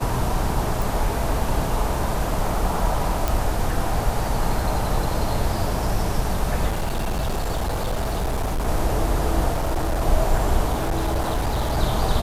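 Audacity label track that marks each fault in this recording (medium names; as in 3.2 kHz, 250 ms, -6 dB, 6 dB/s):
0.820000	0.820000	pop
3.280000	3.280000	pop
6.680000	8.680000	clipped -20 dBFS
9.490000	10.020000	clipped -18.5 dBFS
10.720000	11.780000	clipped -18.5 dBFS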